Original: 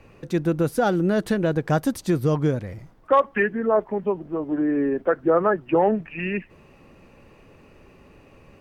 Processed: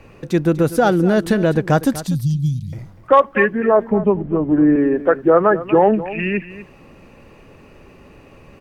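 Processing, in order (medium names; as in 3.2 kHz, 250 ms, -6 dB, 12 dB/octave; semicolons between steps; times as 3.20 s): 2.07–2.73 s: elliptic band-stop 180–3800 Hz, stop band 50 dB; 3.90–4.76 s: tone controls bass +10 dB, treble -12 dB; delay 244 ms -15 dB; trim +6 dB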